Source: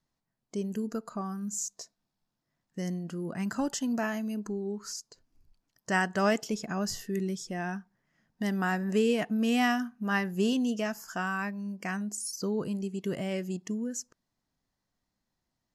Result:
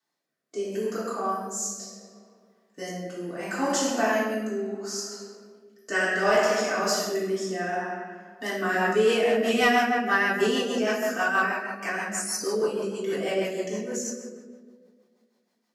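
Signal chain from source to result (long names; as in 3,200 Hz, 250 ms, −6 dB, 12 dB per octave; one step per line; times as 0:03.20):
high-pass filter 410 Hz 12 dB per octave
convolution reverb RT60 1.8 s, pre-delay 3 ms, DRR −10.5 dB
rotating-speaker cabinet horn 0.7 Hz, later 6.3 Hz, at 0:08.43
soft clipping −11.5 dBFS, distortion −25 dB
level +1.5 dB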